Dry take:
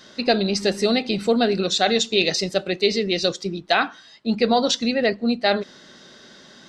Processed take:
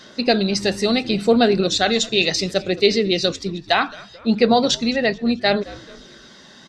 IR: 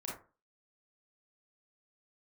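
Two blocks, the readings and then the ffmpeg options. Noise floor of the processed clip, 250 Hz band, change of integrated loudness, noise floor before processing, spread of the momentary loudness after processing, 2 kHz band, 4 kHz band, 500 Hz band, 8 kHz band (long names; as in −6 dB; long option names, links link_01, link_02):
−45 dBFS, +3.0 dB, +2.0 dB, −48 dBFS, 7 LU, +2.0 dB, +2.0 dB, +2.0 dB, +2.0 dB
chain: -filter_complex "[0:a]asplit=4[link_01][link_02][link_03][link_04];[link_02]adelay=217,afreqshift=-86,volume=-21.5dB[link_05];[link_03]adelay=434,afreqshift=-172,volume=-28.2dB[link_06];[link_04]adelay=651,afreqshift=-258,volume=-35dB[link_07];[link_01][link_05][link_06][link_07]amix=inputs=4:normalize=0,aphaser=in_gain=1:out_gain=1:delay=1.1:decay=0.26:speed=0.69:type=sinusoidal,volume=1.5dB"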